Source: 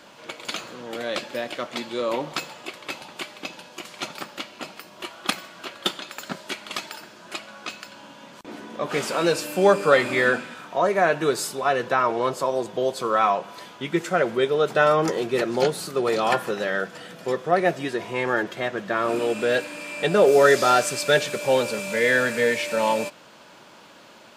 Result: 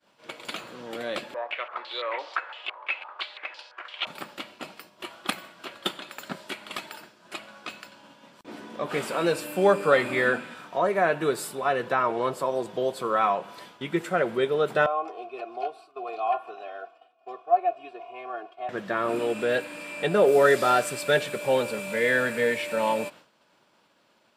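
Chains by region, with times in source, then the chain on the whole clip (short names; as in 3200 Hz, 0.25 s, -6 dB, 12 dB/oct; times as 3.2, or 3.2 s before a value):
1.34–4.07 Bessel high-pass 700 Hz, order 6 + stepped low-pass 5.9 Hz 980–5000 Hz
14.86–18.69 vowel filter a + notch 6700 Hz, Q 17 + comb 2.8 ms, depth 98%
whole clip: expander -39 dBFS; notch 6500 Hz, Q 12; dynamic EQ 5500 Hz, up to -8 dB, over -48 dBFS, Q 1.7; gain -3 dB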